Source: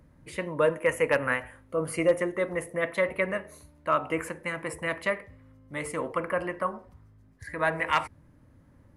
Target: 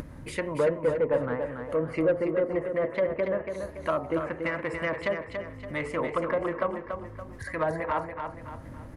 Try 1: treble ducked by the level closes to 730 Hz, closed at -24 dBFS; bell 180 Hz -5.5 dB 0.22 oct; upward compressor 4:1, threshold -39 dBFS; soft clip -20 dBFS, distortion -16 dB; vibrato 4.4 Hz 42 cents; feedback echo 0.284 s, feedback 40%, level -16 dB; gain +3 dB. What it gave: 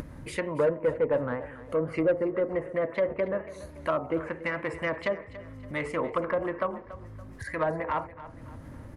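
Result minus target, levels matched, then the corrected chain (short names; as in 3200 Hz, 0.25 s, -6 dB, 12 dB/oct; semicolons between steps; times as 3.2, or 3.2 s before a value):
echo-to-direct -9.5 dB
treble ducked by the level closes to 730 Hz, closed at -24 dBFS; bell 180 Hz -5.5 dB 0.22 oct; upward compressor 4:1, threshold -39 dBFS; soft clip -20 dBFS, distortion -16 dB; vibrato 4.4 Hz 42 cents; feedback echo 0.284 s, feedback 40%, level -6.5 dB; gain +3 dB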